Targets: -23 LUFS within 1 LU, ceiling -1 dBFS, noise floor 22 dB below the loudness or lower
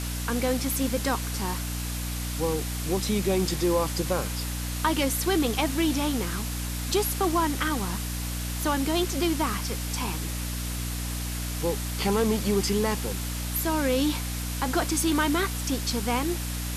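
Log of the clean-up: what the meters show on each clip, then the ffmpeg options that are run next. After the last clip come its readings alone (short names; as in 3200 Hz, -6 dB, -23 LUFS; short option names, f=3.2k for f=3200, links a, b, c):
hum 60 Hz; harmonics up to 300 Hz; hum level -30 dBFS; noise floor -31 dBFS; noise floor target -49 dBFS; loudness -27.0 LUFS; peak -10.0 dBFS; loudness target -23.0 LUFS
-> -af "bandreject=f=60:t=h:w=4,bandreject=f=120:t=h:w=4,bandreject=f=180:t=h:w=4,bandreject=f=240:t=h:w=4,bandreject=f=300:t=h:w=4"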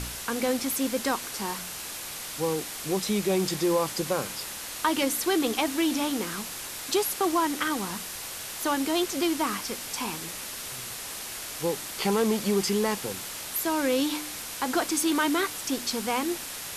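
hum none; noise floor -38 dBFS; noise floor target -50 dBFS
-> -af "afftdn=nr=12:nf=-38"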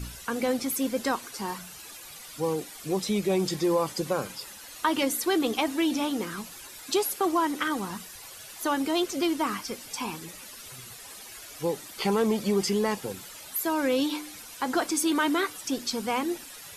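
noise floor -45 dBFS; noise floor target -51 dBFS
-> -af "afftdn=nr=6:nf=-45"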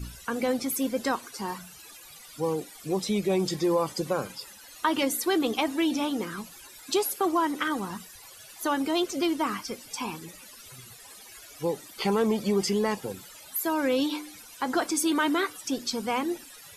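noise floor -49 dBFS; noise floor target -51 dBFS
-> -af "afftdn=nr=6:nf=-49"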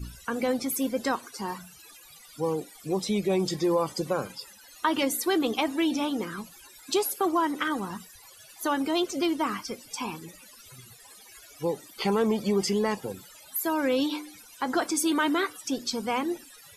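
noise floor -52 dBFS; loudness -28.5 LUFS; peak -11.0 dBFS; loudness target -23.0 LUFS
-> -af "volume=5.5dB"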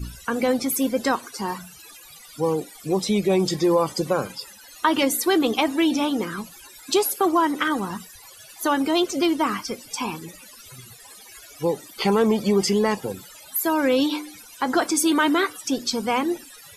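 loudness -23.0 LUFS; peak -5.5 dBFS; noise floor -46 dBFS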